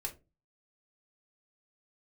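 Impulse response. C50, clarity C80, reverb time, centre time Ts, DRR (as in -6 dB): 15.5 dB, 22.5 dB, 0.25 s, 9 ms, 1.5 dB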